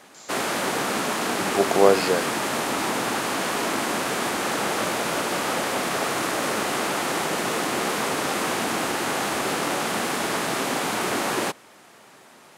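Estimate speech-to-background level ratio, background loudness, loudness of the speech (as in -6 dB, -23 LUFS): 2.5 dB, -24.5 LUFS, -22.0 LUFS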